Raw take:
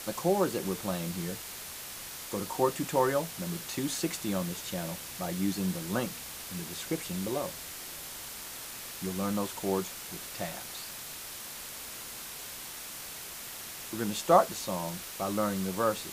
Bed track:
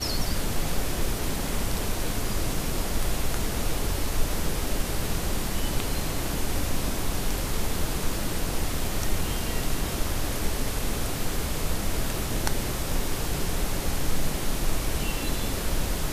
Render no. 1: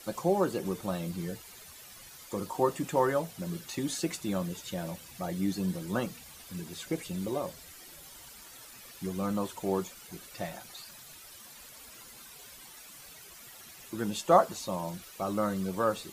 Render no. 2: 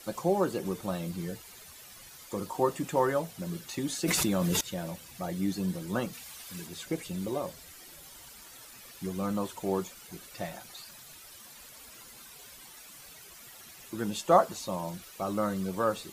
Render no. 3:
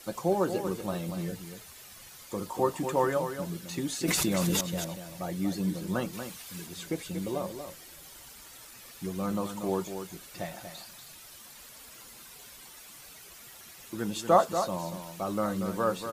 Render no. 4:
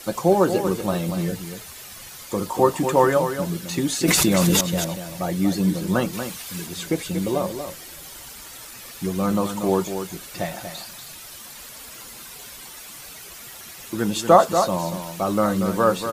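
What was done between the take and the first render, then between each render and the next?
denoiser 12 dB, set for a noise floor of -43 dBFS
4.05–4.61 fast leveller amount 100%; 6.13–6.67 tilt shelf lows -4.5 dB, about 640 Hz
echo 0.236 s -8.5 dB
gain +9.5 dB; limiter -2 dBFS, peak gain reduction 2.5 dB

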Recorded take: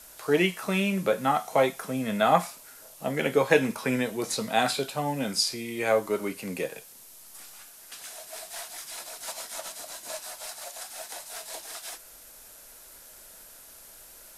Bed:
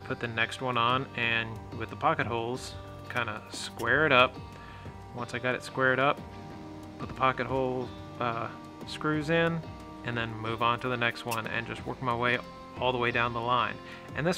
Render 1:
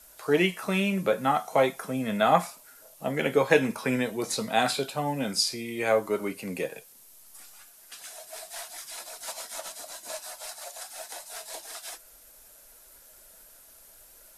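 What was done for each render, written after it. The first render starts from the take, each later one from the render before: denoiser 6 dB, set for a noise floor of -50 dBFS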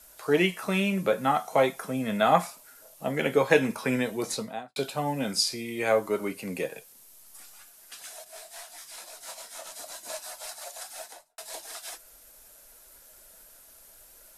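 4.25–4.76 studio fade out; 8.24–9.72 detuned doubles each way 43 cents; 10.98–11.38 studio fade out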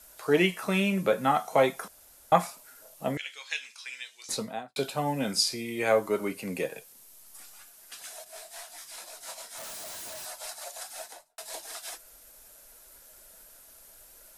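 1.88–2.32 room tone; 3.17–4.29 Butterworth band-pass 4500 Hz, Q 0.96; 9.58–10.25 infinite clipping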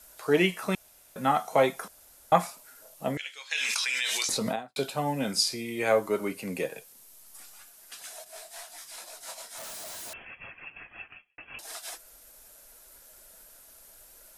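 0.75–1.16 room tone; 3.51–4.56 fast leveller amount 100%; 10.13–11.59 inverted band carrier 3300 Hz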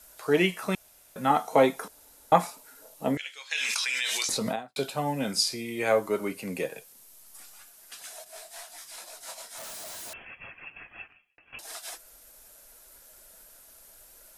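1.3–3.15 small resonant body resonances 280/440/880/3900 Hz, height 8 dB; 11.07–11.53 compressor, threshold -56 dBFS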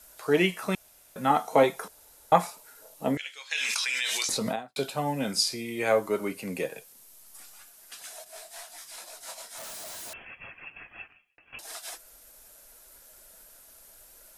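1.63–2.9 bell 260 Hz -11 dB 0.3 oct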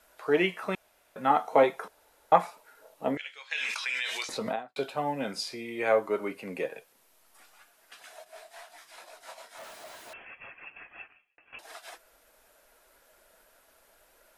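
tone controls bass -9 dB, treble -14 dB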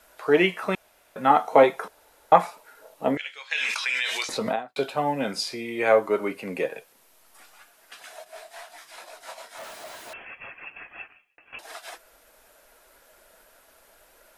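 gain +5.5 dB; limiter -2 dBFS, peak gain reduction 1 dB

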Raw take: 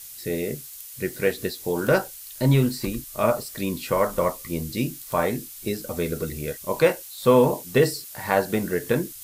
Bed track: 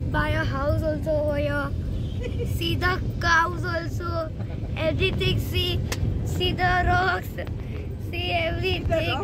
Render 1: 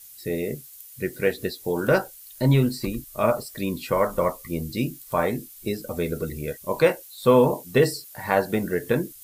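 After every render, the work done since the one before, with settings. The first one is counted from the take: denoiser 8 dB, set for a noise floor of -41 dBFS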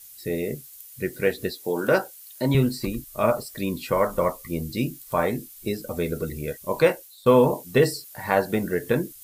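1.56–2.55 HPF 190 Hz; 6.84–7.26 fade out equal-power, to -15 dB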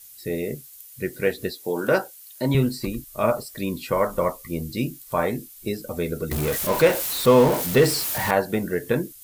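6.31–8.31 zero-crossing step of -22 dBFS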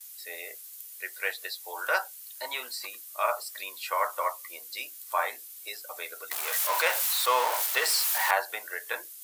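HPF 790 Hz 24 dB/oct; gate with hold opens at -39 dBFS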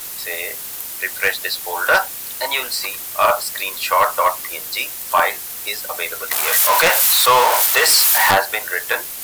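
in parallel at -11 dB: requantised 6-bit, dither triangular; on the sum: sine folder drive 8 dB, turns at -6.5 dBFS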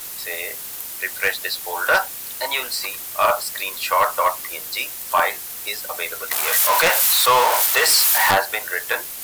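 gain -2.5 dB

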